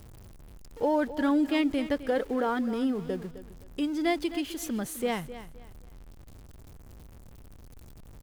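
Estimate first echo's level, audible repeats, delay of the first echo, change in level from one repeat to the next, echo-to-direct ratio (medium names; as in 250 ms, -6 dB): -14.0 dB, 2, 260 ms, -11.5 dB, -13.5 dB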